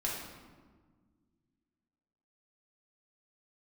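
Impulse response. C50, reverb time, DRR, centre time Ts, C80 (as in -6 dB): 1.0 dB, 1.5 s, -4.5 dB, 67 ms, 4.0 dB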